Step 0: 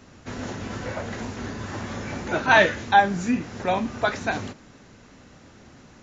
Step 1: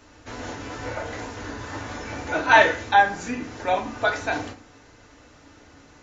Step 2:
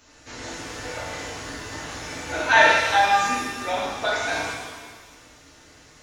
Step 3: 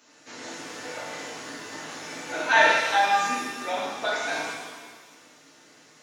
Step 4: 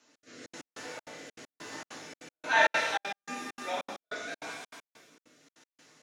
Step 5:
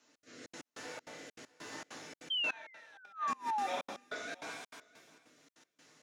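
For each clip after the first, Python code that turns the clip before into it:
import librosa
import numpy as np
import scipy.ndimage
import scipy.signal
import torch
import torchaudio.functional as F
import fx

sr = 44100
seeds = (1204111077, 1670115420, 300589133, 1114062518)

y1 = fx.peak_eq(x, sr, hz=170.0, db=-11.0, octaves=1.3)
y1 = fx.rev_fdn(y1, sr, rt60_s=0.4, lf_ratio=1.2, hf_ratio=0.55, size_ms=20.0, drr_db=2.0)
y1 = y1 * 10.0 ** (-1.0 / 20.0)
y2 = fx.high_shelf(y1, sr, hz=2600.0, db=10.5)
y2 = fx.rev_shimmer(y2, sr, seeds[0], rt60_s=1.4, semitones=7, shimmer_db=-8, drr_db=-2.5)
y2 = y2 * 10.0 ** (-7.0 / 20.0)
y3 = scipy.signal.sosfilt(scipy.signal.butter(4, 160.0, 'highpass', fs=sr, output='sos'), y2)
y3 = y3 * 10.0 ** (-3.0 / 20.0)
y4 = fx.step_gate(y3, sr, bpm=197, pattern='xx.xxx.x..x', floor_db=-60.0, edge_ms=4.5)
y4 = fx.rotary(y4, sr, hz=1.0)
y4 = y4 * 10.0 ** (-4.0 / 20.0)
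y5 = y4 + 10.0 ** (-22.5 / 20.0) * np.pad(y4, (int(655 * sr / 1000.0), 0))[:len(y4)]
y5 = fx.spec_paint(y5, sr, seeds[1], shape='fall', start_s=2.3, length_s=1.37, low_hz=760.0, high_hz=3200.0, level_db=-30.0)
y5 = fx.gate_flip(y5, sr, shuts_db=-21.0, range_db=-26)
y5 = y5 * 10.0 ** (-3.5 / 20.0)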